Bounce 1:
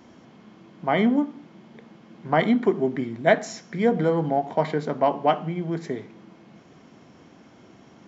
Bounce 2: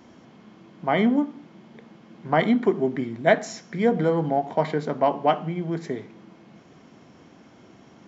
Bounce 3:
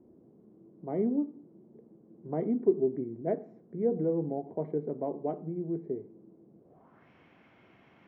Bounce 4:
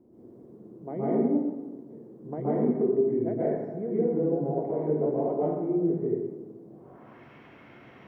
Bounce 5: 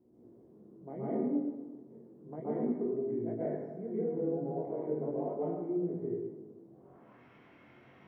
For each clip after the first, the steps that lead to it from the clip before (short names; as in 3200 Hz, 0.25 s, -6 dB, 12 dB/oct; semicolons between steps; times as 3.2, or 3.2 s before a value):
nothing audible
bell 240 Hz -4 dB 0.98 oct; low-pass sweep 390 Hz -> 2400 Hz, 6.6–7.1; dynamic EQ 2200 Hz, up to +7 dB, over -53 dBFS, Q 2.4; gain -9 dB
compressor, threshold -31 dBFS, peak gain reduction 12.5 dB; plate-style reverb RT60 1.2 s, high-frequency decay 0.6×, pre-delay 0.11 s, DRR -9 dB
chorus 0.34 Hz, delay 16.5 ms, depth 7.9 ms; gain -5 dB